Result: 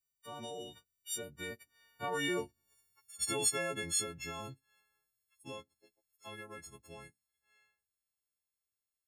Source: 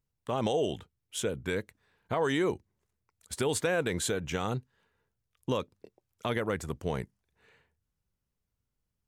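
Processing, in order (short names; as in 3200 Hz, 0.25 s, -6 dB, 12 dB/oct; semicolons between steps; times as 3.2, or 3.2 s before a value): frequency quantiser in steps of 4 st; Doppler pass-by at 2.8, 16 m/s, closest 12 m; mismatched tape noise reduction encoder only; gain -6.5 dB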